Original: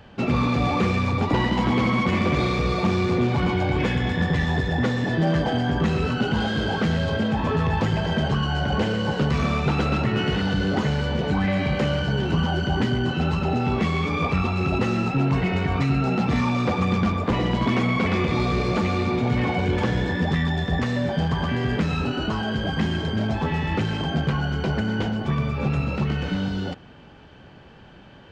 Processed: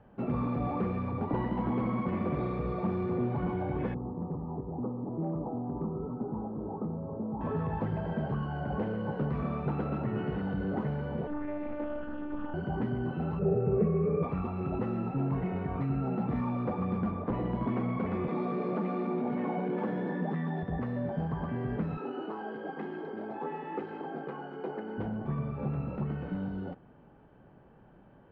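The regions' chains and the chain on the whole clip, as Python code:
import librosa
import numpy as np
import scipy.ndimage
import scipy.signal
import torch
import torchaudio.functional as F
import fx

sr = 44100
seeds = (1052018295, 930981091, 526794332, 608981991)

y = fx.chain(x, sr, fx.cheby_ripple(hz=1300.0, ripple_db=6),
    fx.clip_hard(threshold_db=-17.0), at=(3.94, 7.41))
y = fx.chain(y, sr, fx.robotise(hz=295.0),
    fx.air_absorb(metres=190.0),
    fx.doppler_dist(depth_ms=0.27), at=(11.27, 12.54))
y = fx.chain(y, sr, fx.peak_eq(hz=1800.0, db=-7.0, octaves=2.3),
    fx.fixed_phaser(hz=950.0, stages=6),
    fx.small_body(hz=(210.0, 410.0, 960.0, 2500.0), ring_ms=30, db=16), at=(13.39, 14.23))
y = fx.chain(y, sr, fx.steep_highpass(hz=160.0, slope=48),
    fx.env_flatten(amount_pct=50), at=(18.28, 20.63))
y = fx.chain(y, sr, fx.highpass(hz=230.0, slope=24),
    fx.comb(ms=2.4, depth=0.42), at=(21.97, 24.98))
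y = scipy.signal.sosfilt(scipy.signal.butter(2, 1100.0, 'lowpass', fs=sr, output='sos'), y)
y = fx.peak_eq(y, sr, hz=78.0, db=-9.0, octaves=0.53)
y = y * 10.0 ** (-8.5 / 20.0)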